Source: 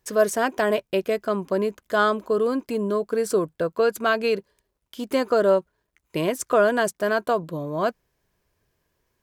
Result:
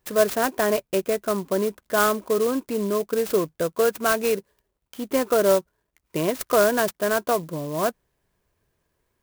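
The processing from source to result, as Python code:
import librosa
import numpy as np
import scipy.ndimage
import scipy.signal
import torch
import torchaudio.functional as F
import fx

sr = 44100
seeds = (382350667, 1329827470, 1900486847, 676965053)

y = fx.clock_jitter(x, sr, seeds[0], jitter_ms=0.054)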